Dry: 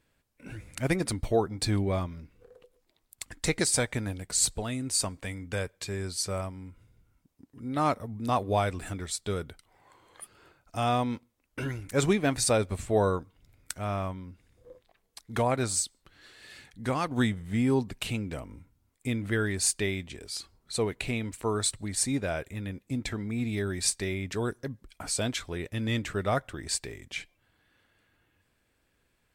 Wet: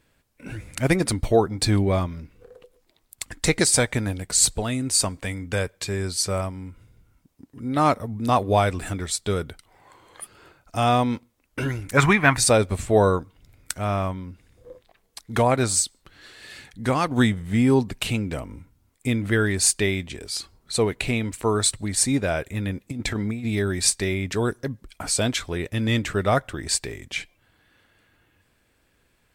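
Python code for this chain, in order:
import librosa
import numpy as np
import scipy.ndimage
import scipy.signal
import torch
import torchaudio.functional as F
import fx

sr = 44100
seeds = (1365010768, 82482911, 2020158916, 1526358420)

y = fx.graphic_eq(x, sr, hz=(125, 250, 500, 1000, 2000, 4000, 8000), db=(4, -3, -9, 11, 9, -4, -5), at=(11.97, 12.37))
y = fx.over_compress(y, sr, threshold_db=-33.0, ratio=-0.5, at=(22.54, 23.45))
y = F.gain(torch.from_numpy(y), 7.0).numpy()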